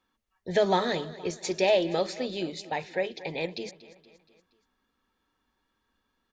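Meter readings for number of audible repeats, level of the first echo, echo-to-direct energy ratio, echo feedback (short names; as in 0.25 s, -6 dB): 4, -17.5 dB, -16.0 dB, 52%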